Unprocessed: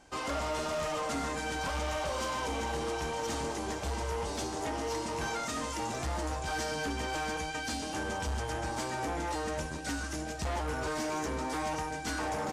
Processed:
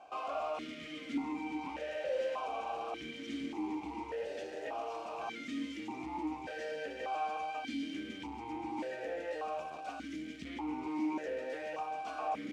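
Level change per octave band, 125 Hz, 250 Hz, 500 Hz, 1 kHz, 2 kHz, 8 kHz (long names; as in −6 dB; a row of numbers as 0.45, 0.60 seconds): −19.5, −1.0, −3.5, −4.5, −8.0, −20.5 decibels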